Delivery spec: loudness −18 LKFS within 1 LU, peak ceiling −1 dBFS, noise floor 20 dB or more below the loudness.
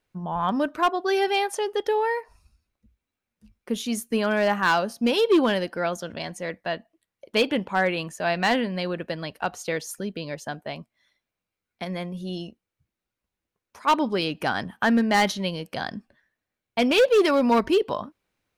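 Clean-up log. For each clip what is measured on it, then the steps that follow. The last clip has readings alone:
share of clipped samples 0.5%; peaks flattened at −13.5 dBFS; integrated loudness −24.5 LKFS; sample peak −13.5 dBFS; target loudness −18.0 LKFS
→ clipped peaks rebuilt −13.5 dBFS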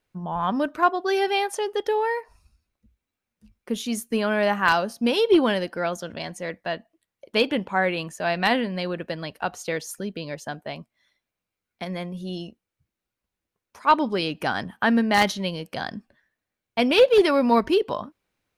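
share of clipped samples 0.0%; integrated loudness −24.0 LKFS; sample peak −4.5 dBFS; target loudness −18.0 LKFS
→ level +6 dB
brickwall limiter −1 dBFS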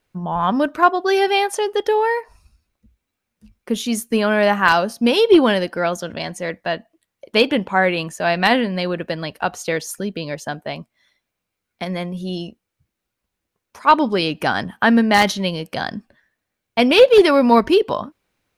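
integrated loudness −18.0 LKFS; sample peak −1.0 dBFS; background noise floor −80 dBFS

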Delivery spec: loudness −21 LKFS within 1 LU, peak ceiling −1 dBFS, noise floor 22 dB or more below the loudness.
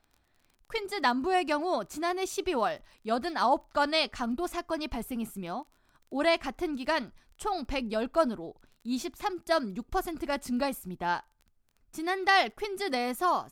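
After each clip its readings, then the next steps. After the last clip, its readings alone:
crackle rate 23 per second; integrated loudness −30.5 LKFS; sample peak −11.0 dBFS; target loudness −21.0 LKFS
→ click removal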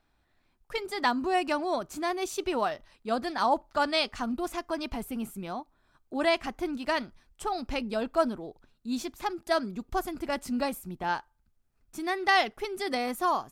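crackle rate 0.074 per second; integrated loudness −30.5 LKFS; sample peak −11.5 dBFS; target loudness −21.0 LKFS
→ level +9.5 dB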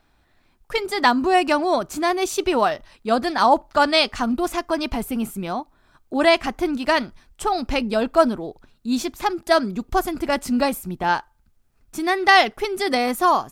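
integrated loudness −21.0 LKFS; sample peak −2.0 dBFS; background noise floor −62 dBFS

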